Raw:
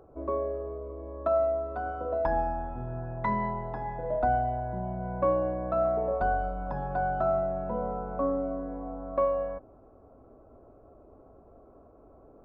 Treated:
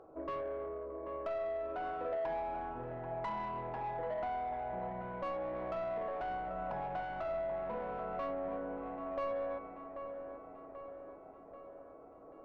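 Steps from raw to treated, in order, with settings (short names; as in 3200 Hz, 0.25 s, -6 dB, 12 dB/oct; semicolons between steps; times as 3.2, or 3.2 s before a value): compressor 6:1, threshold -30 dBFS, peak gain reduction 9 dB; resonator 160 Hz, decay 1.1 s, mix 80%; overdrive pedal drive 20 dB, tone 1500 Hz, clips at -32 dBFS; on a send: dark delay 0.786 s, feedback 57%, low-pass 2300 Hz, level -8.5 dB; on the sum: gain +2 dB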